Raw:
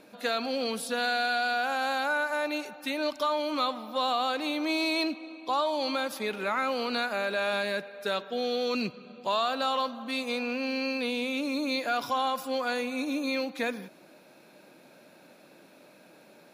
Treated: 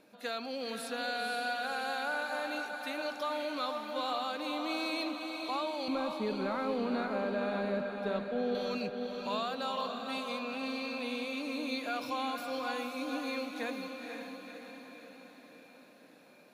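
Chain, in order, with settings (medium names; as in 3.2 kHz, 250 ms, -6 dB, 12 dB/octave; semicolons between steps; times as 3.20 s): 5.88–8.55 s: tilt EQ -4.5 dB/octave; echo that smears into a reverb 506 ms, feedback 57%, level -5 dB; trim -8 dB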